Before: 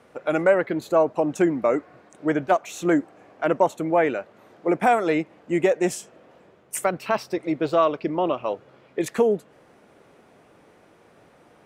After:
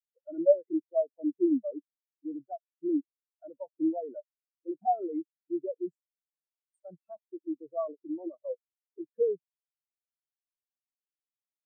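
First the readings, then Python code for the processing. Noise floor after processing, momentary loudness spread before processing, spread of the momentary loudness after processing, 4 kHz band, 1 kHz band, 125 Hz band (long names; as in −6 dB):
below −85 dBFS, 9 LU, 18 LU, below −40 dB, −12.5 dB, below −25 dB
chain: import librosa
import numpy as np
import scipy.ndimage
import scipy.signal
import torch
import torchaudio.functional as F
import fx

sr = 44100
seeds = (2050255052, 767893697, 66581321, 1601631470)

p1 = fx.over_compress(x, sr, threshold_db=-25.0, ratio=-0.5)
p2 = x + (p1 * librosa.db_to_amplitude(1.5))
p3 = fx.spectral_expand(p2, sr, expansion=4.0)
y = p3 * librosa.db_to_amplitude(-6.5)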